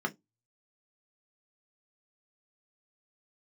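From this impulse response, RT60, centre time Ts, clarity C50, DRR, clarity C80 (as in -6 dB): 0.15 s, 6 ms, 25.0 dB, 2.0 dB, 35.5 dB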